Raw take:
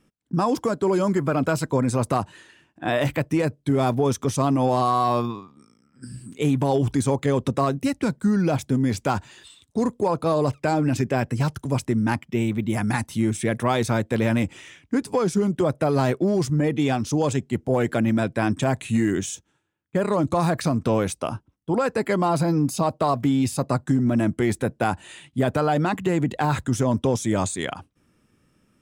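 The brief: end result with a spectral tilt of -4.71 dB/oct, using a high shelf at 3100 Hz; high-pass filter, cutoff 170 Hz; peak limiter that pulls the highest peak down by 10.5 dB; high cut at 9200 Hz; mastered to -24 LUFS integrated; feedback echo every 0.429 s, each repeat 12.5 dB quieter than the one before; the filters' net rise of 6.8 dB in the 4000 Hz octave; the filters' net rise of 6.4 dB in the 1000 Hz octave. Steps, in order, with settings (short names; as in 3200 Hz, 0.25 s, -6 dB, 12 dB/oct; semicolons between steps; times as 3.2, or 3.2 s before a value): HPF 170 Hz; LPF 9200 Hz; bell 1000 Hz +7.5 dB; high shelf 3100 Hz +5 dB; bell 4000 Hz +4.5 dB; limiter -14.5 dBFS; feedback echo 0.429 s, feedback 24%, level -12.5 dB; gain +1 dB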